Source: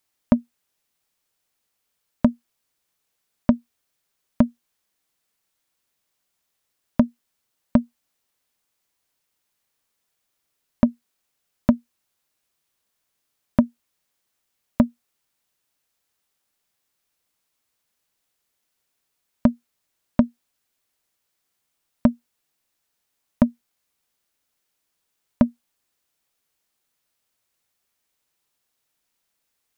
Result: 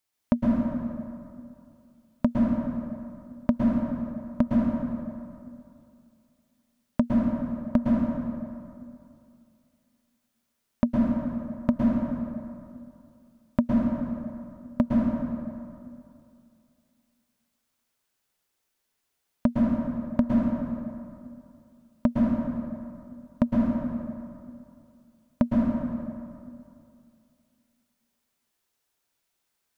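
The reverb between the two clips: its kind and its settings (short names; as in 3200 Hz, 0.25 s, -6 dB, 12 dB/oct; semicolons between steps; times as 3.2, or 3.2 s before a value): plate-style reverb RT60 2.5 s, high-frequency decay 0.55×, pre-delay 0.1 s, DRR -4 dB; gain -6 dB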